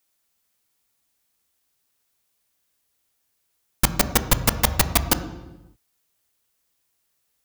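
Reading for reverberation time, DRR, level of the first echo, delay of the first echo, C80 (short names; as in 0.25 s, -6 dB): 1.0 s, 10.0 dB, none, none, 14.0 dB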